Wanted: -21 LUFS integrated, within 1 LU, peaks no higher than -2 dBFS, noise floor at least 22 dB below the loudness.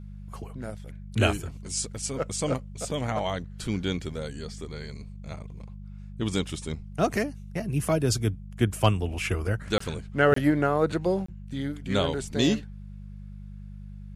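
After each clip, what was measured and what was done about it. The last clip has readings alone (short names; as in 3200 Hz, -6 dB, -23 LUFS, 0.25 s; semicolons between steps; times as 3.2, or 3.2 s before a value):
dropouts 3; longest dropout 24 ms; hum 50 Hz; harmonics up to 200 Hz; hum level -38 dBFS; loudness -28.0 LUFS; peak -7.0 dBFS; loudness target -21.0 LUFS
-> interpolate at 9.78/10.34/11.26, 24 ms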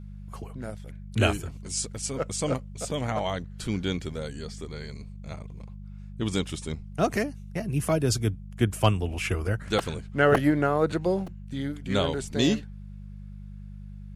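dropouts 0; hum 50 Hz; harmonics up to 200 Hz; hum level -38 dBFS
-> de-hum 50 Hz, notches 4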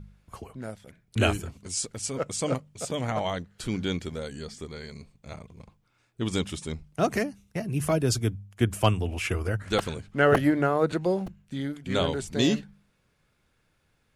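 hum none; loudness -28.0 LUFS; peak -7.0 dBFS; loudness target -21.0 LUFS
-> gain +7 dB; limiter -2 dBFS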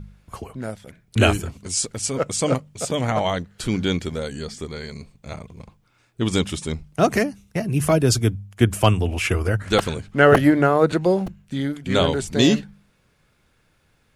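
loudness -21.0 LUFS; peak -2.0 dBFS; noise floor -63 dBFS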